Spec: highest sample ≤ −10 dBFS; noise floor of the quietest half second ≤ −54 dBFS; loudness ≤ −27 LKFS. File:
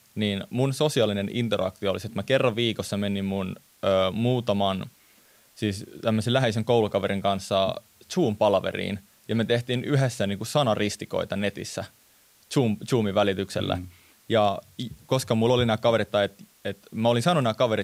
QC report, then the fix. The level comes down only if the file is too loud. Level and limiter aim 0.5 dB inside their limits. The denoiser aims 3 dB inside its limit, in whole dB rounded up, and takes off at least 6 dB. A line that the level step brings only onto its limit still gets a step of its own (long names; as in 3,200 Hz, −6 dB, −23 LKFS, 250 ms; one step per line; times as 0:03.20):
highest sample −8.0 dBFS: out of spec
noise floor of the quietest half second −59 dBFS: in spec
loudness −25.5 LKFS: out of spec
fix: level −2 dB
brickwall limiter −10.5 dBFS